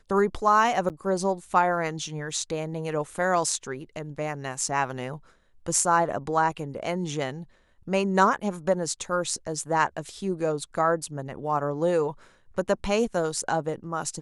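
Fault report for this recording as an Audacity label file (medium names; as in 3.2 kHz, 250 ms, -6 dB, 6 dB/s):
0.890000	0.900000	dropout 8.4 ms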